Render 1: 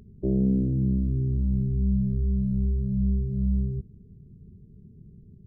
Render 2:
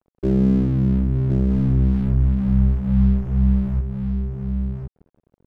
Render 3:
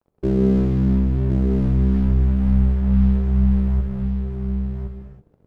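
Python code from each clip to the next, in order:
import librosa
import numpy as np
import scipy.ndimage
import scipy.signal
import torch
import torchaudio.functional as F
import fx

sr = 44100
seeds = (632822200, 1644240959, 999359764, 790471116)

y1 = np.sign(x) * np.maximum(np.abs(x) - 10.0 ** (-42.5 / 20.0), 0.0)
y1 = y1 + 10.0 ** (-5.0 / 20.0) * np.pad(y1, (int(1066 * sr / 1000.0), 0))[:len(y1)]
y1 = F.gain(torch.from_numpy(y1), 6.5).numpy()
y2 = fx.rev_gated(y1, sr, seeds[0], gate_ms=360, shape='flat', drr_db=2.0)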